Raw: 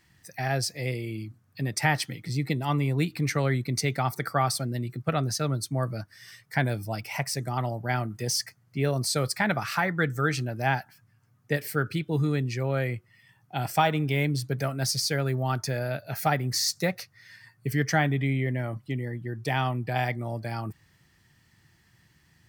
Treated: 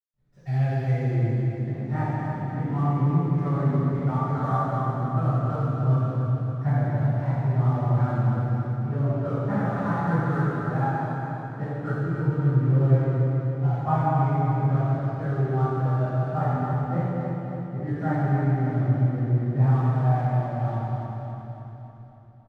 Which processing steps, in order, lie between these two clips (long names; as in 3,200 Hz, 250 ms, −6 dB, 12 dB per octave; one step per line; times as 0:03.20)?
RIAA equalisation playback
mains-hum notches 50/100/150 Hz
in parallel at −0.5 dB: downward compressor, threshold −26 dBFS, peak gain reduction 13.5 dB
on the sum: low-pass filter sweep 6,700 Hz → 1,200 Hz, 0:00.25–0:01.01
slack as between gear wheels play −34.5 dBFS
flanger 0.15 Hz, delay 6.6 ms, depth 5.7 ms, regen +42%
repeating echo 280 ms, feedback 57%, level −7.5 dB
convolution reverb RT60 2.9 s, pre-delay 76 ms